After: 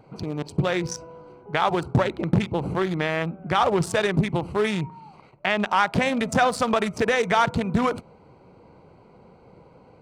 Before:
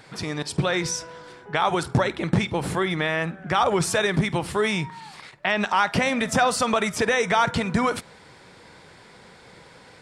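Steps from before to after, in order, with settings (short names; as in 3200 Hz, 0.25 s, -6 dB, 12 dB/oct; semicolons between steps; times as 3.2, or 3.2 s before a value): Wiener smoothing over 25 samples; gain +1 dB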